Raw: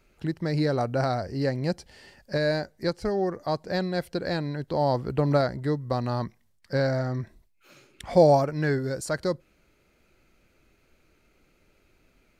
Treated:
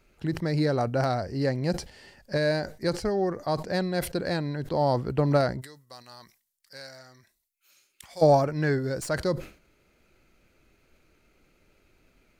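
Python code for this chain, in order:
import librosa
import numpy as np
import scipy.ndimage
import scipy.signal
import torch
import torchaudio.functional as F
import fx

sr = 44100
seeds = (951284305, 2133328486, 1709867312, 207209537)

y = fx.tracing_dist(x, sr, depth_ms=0.021)
y = fx.pre_emphasis(y, sr, coefficient=0.97, at=(5.6, 8.21), fade=0.02)
y = fx.sustainer(y, sr, db_per_s=140.0)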